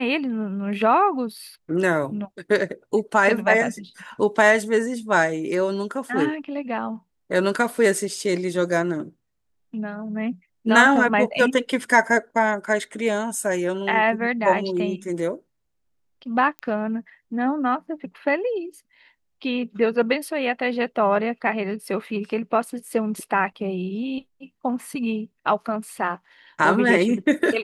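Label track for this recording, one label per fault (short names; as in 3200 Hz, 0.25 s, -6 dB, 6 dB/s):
16.590000	16.590000	pop -18 dBFS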